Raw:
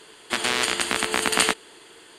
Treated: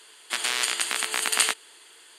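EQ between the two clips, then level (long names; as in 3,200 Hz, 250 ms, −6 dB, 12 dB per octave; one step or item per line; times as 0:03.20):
high-pass filter 1,300 Hz 6 dB per octave
high-shelf EQ 8,400 Hz +6.5 dB
−2.0 dB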